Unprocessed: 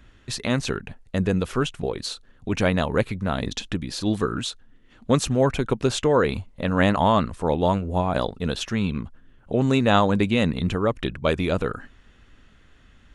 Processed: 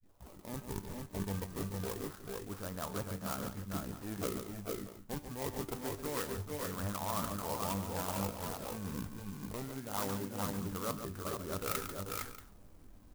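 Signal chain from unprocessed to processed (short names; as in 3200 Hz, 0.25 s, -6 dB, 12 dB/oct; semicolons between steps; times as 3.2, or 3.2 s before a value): tape start at the beginning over 0.47 s; bell 2800 Hz +15 dB 0.93 oct; low-pass opened by the level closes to 1200 Hz, open at -15.5 dBFS; reverse; compressor 8:1, threshold -31 dBFS, peak gain reduction 21 dB; reverse; resonant high shelf 1900 Hz -14 dB, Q 3; decimation with a swept rate 19×, swing 160% 0.25 Hz; resonator 98 Hz, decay 0.35 s, harmonics all, mix 60%; tapped delay 0.142/0.44/0.46/0.633 s -9/-6/-5.5/-16 dB; clock jitter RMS 0.091 ms; gain -1 dB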